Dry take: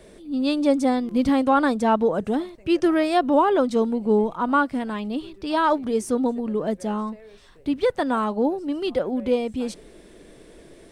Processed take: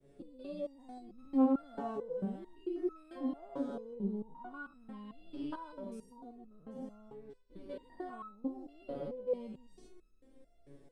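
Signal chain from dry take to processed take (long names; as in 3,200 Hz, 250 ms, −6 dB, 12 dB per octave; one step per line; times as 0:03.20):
spectrum averaged block by block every 200 ms
tilt shelving filter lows +7 dB, about 790 Hz
downward compressor 2 to 1, threshold −33 dBFS, peak gain reduction 10.5 dB
downward expander −37 dBFS
step-sequenced resonator 4.5 Hz 140–1,300 Hz
level +5 dB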